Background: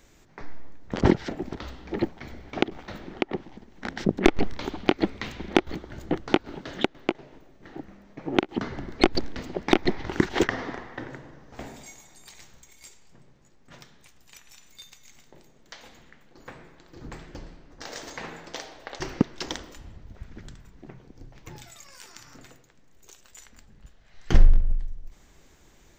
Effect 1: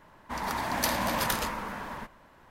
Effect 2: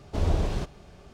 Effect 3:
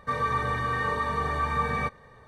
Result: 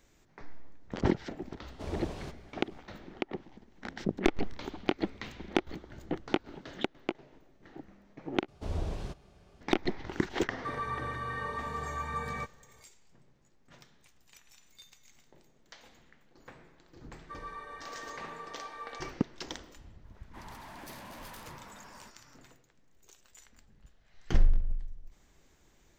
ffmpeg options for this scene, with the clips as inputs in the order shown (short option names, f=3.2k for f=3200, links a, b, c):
-filter_complex "[2:a]asplit=2[a][b];[3:a]asplit=2[c][d];[0:a]volume=-8dB[e];[a]lowshelf=f=93:g=-11[f];[d]highpass=f=340:w=0.5412,highpass=f=340:w=1.3066[g];[1:a]asoftclip=type=tanh:threshold=-32dB[h];[e]asplit=2[i][j];[i]atrim=end=8.484[k];[b]atrim=end=1.13,asetpts=PTS-STARTPTS,volume=-9.5dB[l];[j]atrim=start=9.606[m];[f]atrim=end=1.13,asetpts=PTS-STARTPTS,volume=-8.5dB,afade=t=in:d=0.004:c=hsin,afade=t=out:st=1.126:d=0.004:c=hsin,adelay=1660[n];[c]atrim=end=2.27,asetpts=PTS-STARTPTS,volume=-9dB,afade=t=in:d=0.004:c=hsin,afade=t=out:st=2.266:d=0.004:c=hsin,adelay=10570[o];[g]atrim=end=2.27,asetpts=PTS-STARTPTS,volume=-16.5dB,afade=t=in:d=0.004:c=hsin,afade=t=out:st=2.266:d=0.004:c=hsin,adelay=17220[p];[h]atrim=end=2.5,asetpts=PTS-STARTPTS,volume=-12.5dB,afade=t=in:d=0.004:c=hsin,afade=t=out:st=2.496:d=0.004:c=hsin,adelay=883764S[q];[k][l]acrossfade=d=0.004:c1=hsin:c2=hsin[r];[r][m]acrossfade=d=0.004:c1=hsin:c2=hsin[s];[s][n][o][p][q]amix=inputs=5:normalize=0"